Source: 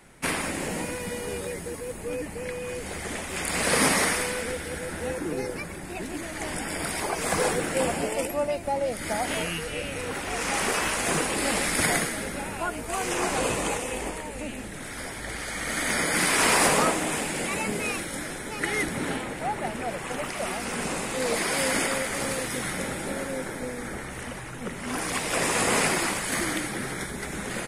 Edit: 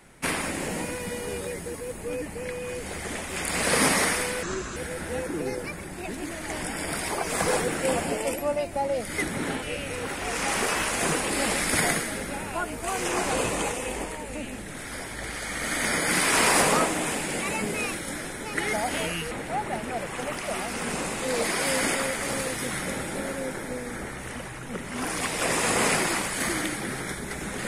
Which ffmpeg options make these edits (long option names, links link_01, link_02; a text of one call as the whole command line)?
ffmpeg -i in.wav -filter_complex "[0:a]asplit=7[link_01][link_02][link_03][link_04][link_05][link_06][link_07];[link_01]atrim=end=4.434[link_08];[link_02]atrim=start=4.43:end=4.68,asetpts=PTS-STARTPTS,asetrate=33075,aresample=44100[link_09];[link_03]atrim=start=4.676:end=9.102[link_10];[link_04]atrim=start=18.788:end=19.232[link_11];[link_05]atrim=start=9.678:end=18.792[link_12];[link_06]atrim=start=9.098:end=9.682[link_13];[link_07]atrim=start=19.228[link_14];[link_08][link_09]acrossfade=duration=0.004:curve1=hsin:curve2=hsin[link_15];[link_15][link_10]acrossfade=duration=0.004:curve1=hsin:curve2=hsin[link_16];[link_16][link_11]acrossfade=duration=0.004:curve1=hsin:curve2=hsin[link_17];[link_17][link_12]acrossfade=duration=0.004:curve1=hsin:curve2=hsin[link_18];[link_18][link_13]acrossfade=duration=0.004:curve1=hsin:curve2=hsin[link_19];[link_19][link_14]acrossfade=duration=0.004:curve1=hsin:curve2=hsin" out.wav